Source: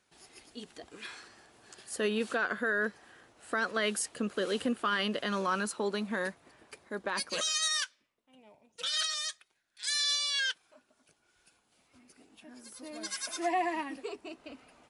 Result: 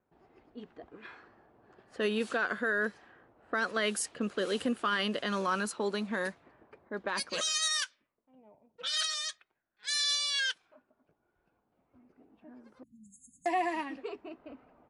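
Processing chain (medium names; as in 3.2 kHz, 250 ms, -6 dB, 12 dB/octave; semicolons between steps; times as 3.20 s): level-controlled noise filter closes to 860 Hz, open at -28 dBFS; 12.83–13.46 s: brick-wall FIR band-stop 260–6400 Hz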